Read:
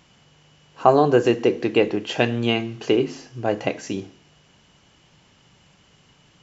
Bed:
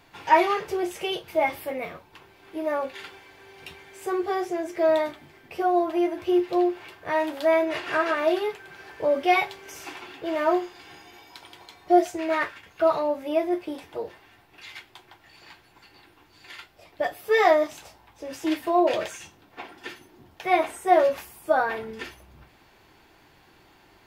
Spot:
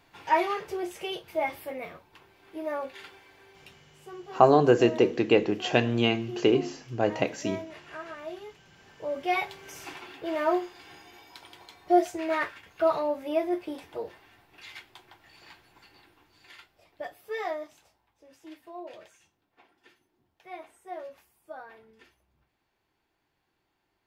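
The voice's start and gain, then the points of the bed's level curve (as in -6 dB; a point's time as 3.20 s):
3.55 s, -3.0 dB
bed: 3.43 s -5.5 dB
4.02 s -16.5 dB
8.63 s -16.5 dB
9.58 s -3 dB
15.82 s -3 dB
18.45 s -21 dB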